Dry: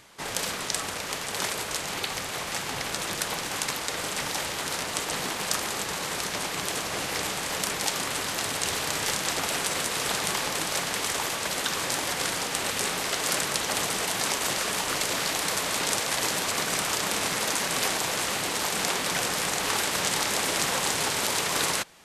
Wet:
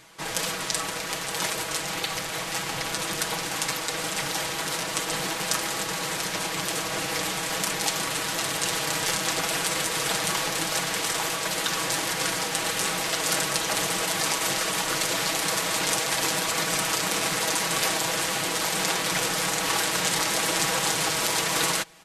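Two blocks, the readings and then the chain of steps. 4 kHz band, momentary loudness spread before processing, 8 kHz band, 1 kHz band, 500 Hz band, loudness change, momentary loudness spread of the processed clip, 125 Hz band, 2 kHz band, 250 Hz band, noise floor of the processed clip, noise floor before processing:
+1.5 dB, 5 LU, +1.5 dB, +1.5 dB, +1.5 dB, +1.5 dB, 5 LU, +3.0 dB, +1.5 dB, +2.0 dB, -32 dBFS, -34 dBFS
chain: comb 6.2 ms, depth 69%

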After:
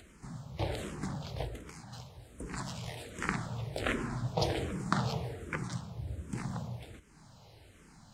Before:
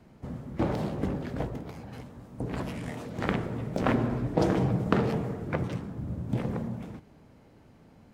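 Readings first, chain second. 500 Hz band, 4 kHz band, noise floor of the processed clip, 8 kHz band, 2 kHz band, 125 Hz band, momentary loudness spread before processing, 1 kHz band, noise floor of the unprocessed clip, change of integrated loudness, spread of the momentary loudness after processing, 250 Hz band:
-8.0 dB, +3.5 dB, -58 dBFS, +6.0 dB, -1.0 dB, -6.0 dB, 15 LU, -4.0 dB, -56 dBFS, -6.5 dB, 16 LU, -10.0 dB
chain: ten-band graphic EQ 250 Hz -9 dB, 500 Hz -4 dB, 4 kHz +6 dB, 8 kHz +11 dB; upward compressor, threshold -46 dBFS; barber-pole phaser -1.3 Hz

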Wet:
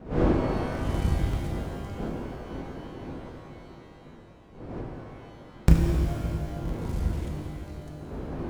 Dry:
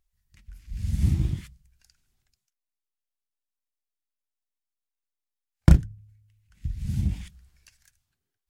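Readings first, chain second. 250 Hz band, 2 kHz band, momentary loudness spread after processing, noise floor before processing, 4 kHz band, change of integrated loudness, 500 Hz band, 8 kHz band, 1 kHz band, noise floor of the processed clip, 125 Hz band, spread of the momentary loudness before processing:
+3.5 dB, +6.0 dB, 21 LU, under -85 dBFS, +4.0 dB, -4.0 dB, +14.0 dB, +0.5 dB, +12.0 dB, -49 dBFS, -1.0 dB, 19 LU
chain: cycle switcher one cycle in 3, muted; wind noise 350 Hz -34 dBFS; pitch-shifted reverb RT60 2.7 s, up +12 st, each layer -8 dB, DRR 0 dB; trim -3 dB

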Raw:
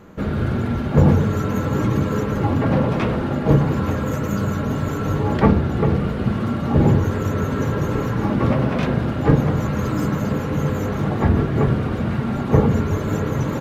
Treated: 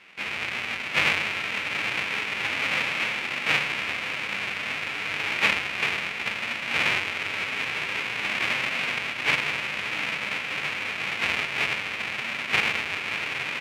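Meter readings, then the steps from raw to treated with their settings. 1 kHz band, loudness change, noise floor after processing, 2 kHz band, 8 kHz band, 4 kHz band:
-6.5 dB, -5.5 dB, -33 dBFS, +9.5 dB, no reading, +11.5 dB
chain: square wave that keeps the level; band-pass filter 2.4 kHz, Q 4.1; trim +6 dB

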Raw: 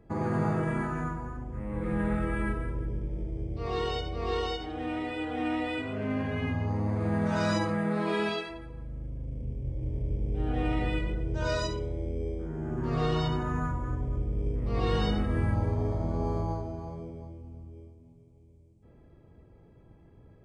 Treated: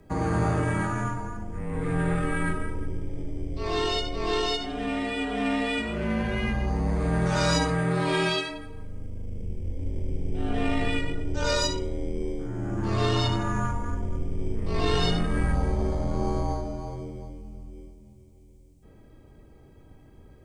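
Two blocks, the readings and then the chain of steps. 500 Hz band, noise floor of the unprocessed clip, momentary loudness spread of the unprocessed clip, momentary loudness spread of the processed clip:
+3.0 dB, -56 dBFS, 11 LU, 12 LU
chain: single-diode clipper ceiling -20.5 dBFS; frequency shift -38 Hz; treble shelf 3.8 kHz +12 dB; trim +4.5 dB

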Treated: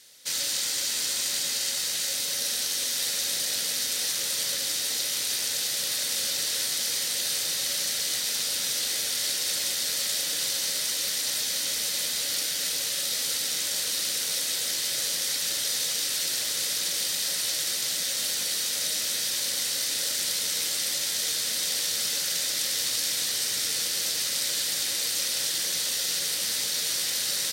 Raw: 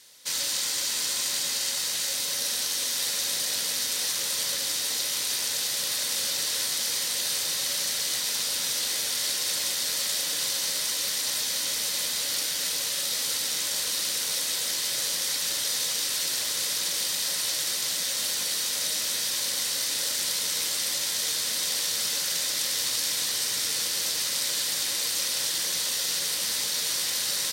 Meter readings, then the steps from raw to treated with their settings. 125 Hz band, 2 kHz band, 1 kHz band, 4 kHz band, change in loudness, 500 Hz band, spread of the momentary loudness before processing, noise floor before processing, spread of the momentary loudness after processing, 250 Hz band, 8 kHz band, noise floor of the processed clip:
0.0 dB, -0.5 dB, -3.0 dB, 0.0 dB, 0.0 dB, -0.5 dB, 1 LU, -29 dBFS, 1 LU, 0.0 dB, 0.0 dB, -29 dBFS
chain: peaking EQ 1 kHz -7 dB 0.42 oct

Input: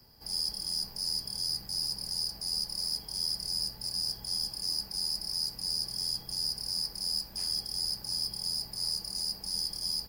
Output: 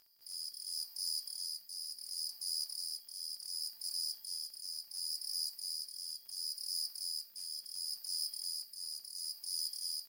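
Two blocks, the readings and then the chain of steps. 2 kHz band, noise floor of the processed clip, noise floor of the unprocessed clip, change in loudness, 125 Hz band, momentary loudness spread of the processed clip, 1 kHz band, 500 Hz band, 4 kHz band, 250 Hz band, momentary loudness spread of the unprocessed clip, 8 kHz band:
no reading, -59 dBFS, -48 dBFS, -7.5 dB, under -35 dB, 6 LU, under -20 dB, under -25 dB, -8.0 dB, under -30 dB, 2 LU, -3.5 dB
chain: rotary cabinet horn 0.7 Hz; differentiator; crackle 46 per s -49 dBFS; trim -2.5 dB

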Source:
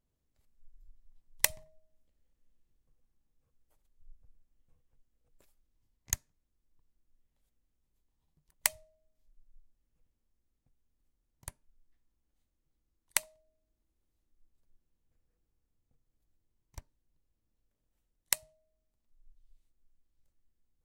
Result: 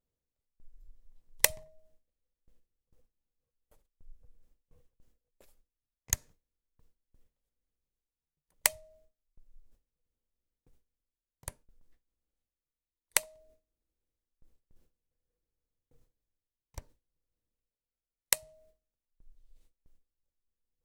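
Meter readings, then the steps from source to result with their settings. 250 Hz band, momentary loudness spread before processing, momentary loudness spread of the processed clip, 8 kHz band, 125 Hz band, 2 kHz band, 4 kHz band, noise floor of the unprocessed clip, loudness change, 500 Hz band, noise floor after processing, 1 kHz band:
+3.5 dB, 19 LU, 19 LU, +2.5 dB, +2.5 dB, +2.5 dB, +2.5 dB, -82 dBFS, +2.5 dB, +7.0 dB, under -85 dBFS, +3.0 dB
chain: peaking EQ 490 Hz +8.5 dB 0.52 oct; reverse; upward compressor, threshold -57 dBFS; reverse; gate with hold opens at -56 dBFS; trim +2.5 dB

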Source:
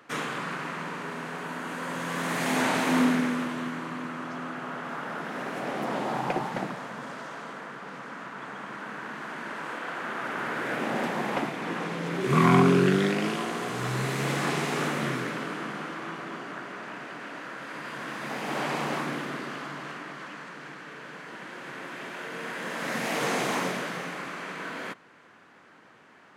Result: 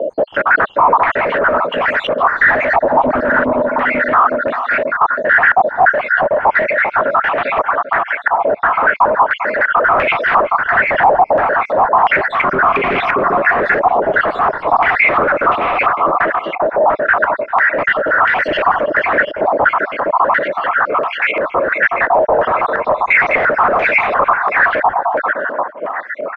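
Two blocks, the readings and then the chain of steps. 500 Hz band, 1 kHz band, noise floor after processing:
+17.5 dB, +20.0 dB, -30 dBFS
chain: random holes in the spectrogram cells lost 77%; high-pass 170 Hz; peaking EQ 600 Hz +15 dB 0.6 oct; feedback delay 395 ms, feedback 21%, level -12 dB; overdrive pedal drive 38 dB, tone 1.1 kHz, clips at -5.5 dBFS; peak limiter -18 dBFS, peak gain reduction 11 dB; step-sequenced low-pass 2.9 Hz 860–2400 Hz; trim +5 dB

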